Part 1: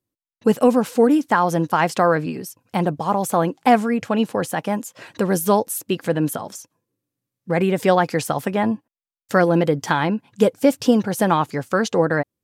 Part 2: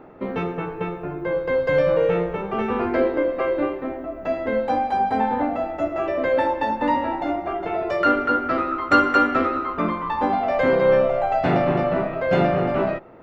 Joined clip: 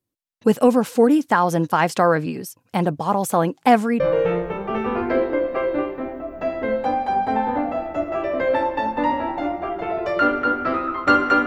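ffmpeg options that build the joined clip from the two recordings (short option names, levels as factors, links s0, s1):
-filter_complex "[0:a]apad=whole_dur=11.46,atrim=end=11.46,atrim=end=4.002[s0];[1:a]atrim=start=1.838:end=9.3[s1];[s0][s1]acrossfade=d=0.004:c1=hsin:c2=hsin"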